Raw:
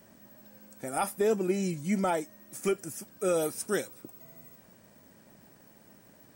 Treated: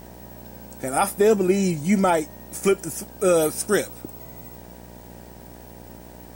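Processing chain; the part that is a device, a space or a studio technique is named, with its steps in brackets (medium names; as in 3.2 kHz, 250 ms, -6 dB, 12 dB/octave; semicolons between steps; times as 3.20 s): video cassette with head-switching buzz (mains buzz 60 Hz, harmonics 16, -53 dBFS -3 dB/octave; white noise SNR 33 dB); trim +9 dB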